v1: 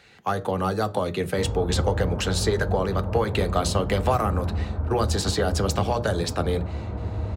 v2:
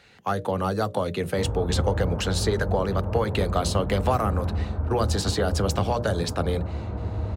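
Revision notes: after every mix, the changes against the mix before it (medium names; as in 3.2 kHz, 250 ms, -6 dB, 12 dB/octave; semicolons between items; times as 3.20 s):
speech: send off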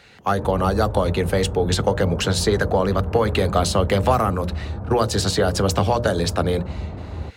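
speech +5.5 dB; background: entry -1.00 s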